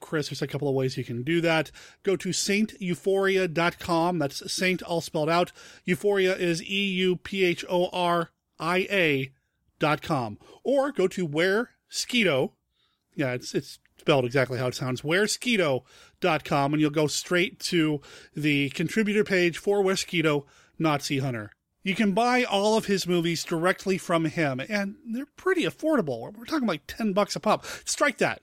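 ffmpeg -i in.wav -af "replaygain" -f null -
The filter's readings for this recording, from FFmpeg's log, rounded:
track_gain = +5.8 dB
track_peak = 0.256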